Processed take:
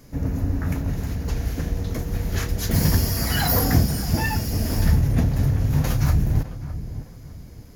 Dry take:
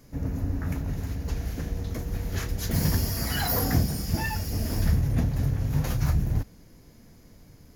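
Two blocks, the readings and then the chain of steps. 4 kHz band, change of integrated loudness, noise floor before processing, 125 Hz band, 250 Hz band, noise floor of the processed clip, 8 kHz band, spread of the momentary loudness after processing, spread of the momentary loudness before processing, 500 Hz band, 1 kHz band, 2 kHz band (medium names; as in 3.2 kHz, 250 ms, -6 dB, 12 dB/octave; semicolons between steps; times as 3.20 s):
+5.0 dB, +5.0 dB, -53 dBFS, +5.5 dB, +5.5 dB, -42 dBFS, +5.0 dB, 13 LU, 8 LU, +5.0 dB, +5.0 dB, +5.0 dB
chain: filtered feedback delay 608 ms, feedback 33%, low-pass 1.2 kHz, level -12 dB; trim +5 dB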